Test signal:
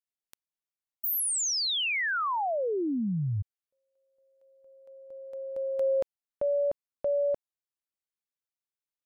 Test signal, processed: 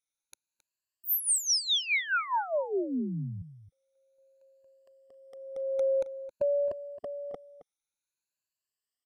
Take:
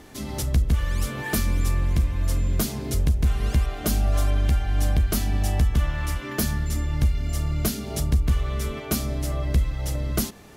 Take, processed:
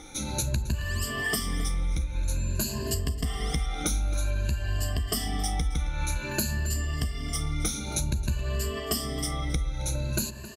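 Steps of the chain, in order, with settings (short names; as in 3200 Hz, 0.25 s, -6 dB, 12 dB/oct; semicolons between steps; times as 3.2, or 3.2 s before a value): moving spectral ripple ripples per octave 1.4, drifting +0.52 Hz, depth 19 dB; LPF 10000 Hz 12 dB/oct; high shelf 3100 Hz +9 dB; compressor, threshold -20 dBFS; outdoor echo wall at 46 m, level -14 dB; gain -4.5 dB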